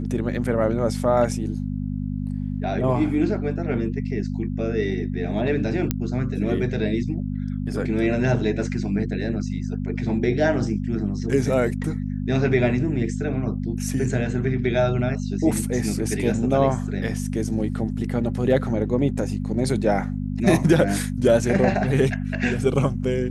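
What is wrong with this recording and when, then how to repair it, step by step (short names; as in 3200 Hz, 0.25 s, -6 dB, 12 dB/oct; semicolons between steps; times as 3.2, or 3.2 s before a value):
hum 50 Hz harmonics 5 -27 dBFS
5.91 pop -7 dBFS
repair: de-click; de-hum 50 Hz, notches 5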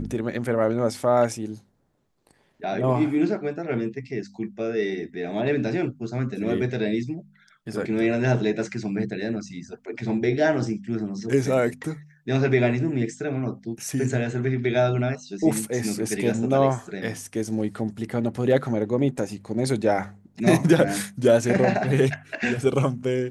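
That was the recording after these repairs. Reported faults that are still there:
none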